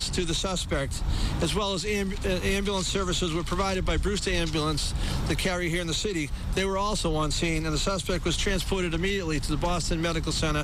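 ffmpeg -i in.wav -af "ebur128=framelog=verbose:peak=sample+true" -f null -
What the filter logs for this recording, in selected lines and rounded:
Integrated loudness:
  I:         -27.4 LUFS
  Threshold: -37.4 LUFS
Loudness range:
  LRA:         0.5 LU
  Threshold: -47.3 LUFS
  LRA low:   -27.6 LUFS
  LRA high:  -27.1 LUFS
Sample peak:
  Peak:      -14.2 dBFS
True peak:
  Peak:      -14.2 dBFS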